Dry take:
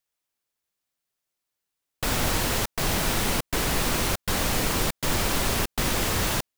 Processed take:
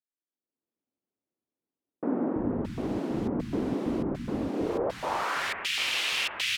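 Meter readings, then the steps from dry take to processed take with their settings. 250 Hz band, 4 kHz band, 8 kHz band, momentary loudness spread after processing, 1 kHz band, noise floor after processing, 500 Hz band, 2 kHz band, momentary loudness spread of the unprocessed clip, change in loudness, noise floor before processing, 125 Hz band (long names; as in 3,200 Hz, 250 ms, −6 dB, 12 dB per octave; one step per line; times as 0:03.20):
+1.5 dB, −3.5 dB, below −10 dB, 6 LU, −5.0 dB, below −85 dBFS, −1.5 dB, −3.0 dB, 2 LU, −5.0 dB, −84 dBFS, −8.5 dB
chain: three-band delay without the direct sound mids, lows, highs 330/620 ms, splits 200/1,600 Hz
automatic gain control gain up to 16.5 dB
band-pass filter sweep 270 Hz → 2,700 Hz, 0:04.52–0:05.67
level −4 dB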